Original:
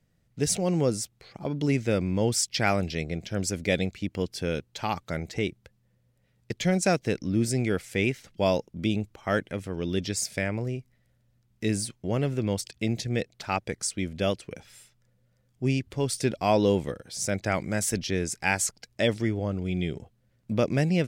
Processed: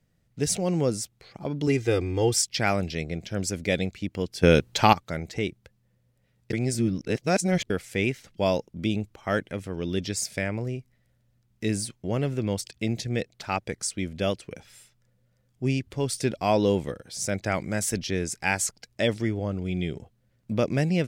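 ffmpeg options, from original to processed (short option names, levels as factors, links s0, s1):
-filter_complex "[0:a]asettb=1/sr,asplit=3[s0][s1][s2];[s0]atrim=end=1.674[s3];[s1]atrim=start=1.67:end=2.42,asetpts=PTS-STARTPTS,afade=t=in:d=0.004:c=qsin,afade=t=out:st=0.746:d=0.004:c=qsin,aecho=1:1:2.5:0.87,atrim=end_sample=33075[s4];[s2]atrim=start=2.416[s5];[s3][s4]acrossfade=d=0.004:c1=hsin:c2=qsin[s6];[s6][s5]acrossfade=d=0.004:c1=qsin:c2=hsin,asplit=5[s7][s8][s9][s10][s11];[s7]atrim=end=4.432[s12];[s8]atrim=start=4.428:end=4.932,asetpts=PTS-STARTPTS,volume=3.76[s13];[s9]atrim=start=4.928:end=6.532[s14];[s10]atrim=start=6.528:end=7.702,asetpts=PTS-STARTPTS,areverse[s15];[s11]atrim=start=7.698[s16];[s12][s13]acrossfade=d=0.004:c1=hsin:c2=hsin[s17];[s17][s14]acrossfade=d=0.004:c1=hsin:c2=hsin[s18];[s18][s15]acrossfade=d=0.004:c1=hsin:c2=hsin[s19];[s19][s16]acrossfade=d=0.004:c1=hsin:c2=hsin"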